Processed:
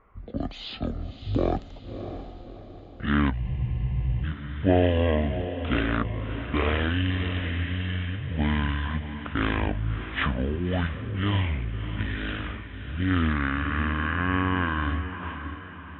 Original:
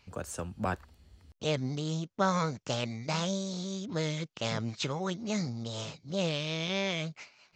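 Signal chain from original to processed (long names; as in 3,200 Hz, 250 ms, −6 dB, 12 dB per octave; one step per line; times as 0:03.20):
low-pass that shuts in the quiet parts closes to 2,600 Hz, open at −31.5 dBFS
change of speed 0.472×
on a send: feedback delay with all-pass diffusion 626 ms, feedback 45%, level −10 dB
on the sum: frozen spectrum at 0:03.43, 0.81 s
level +6.5 dB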